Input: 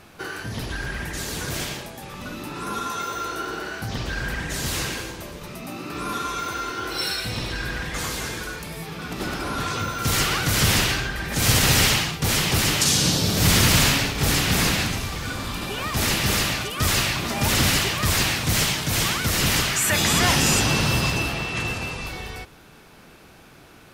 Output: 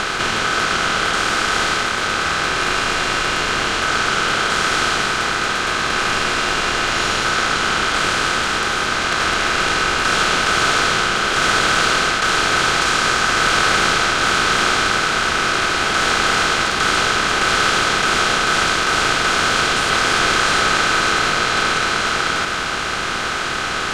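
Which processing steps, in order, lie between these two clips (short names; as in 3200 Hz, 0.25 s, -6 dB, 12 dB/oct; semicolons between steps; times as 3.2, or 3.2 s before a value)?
per-bin compression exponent 0.2; air absorption 110 m; ring modulator 1400 Hz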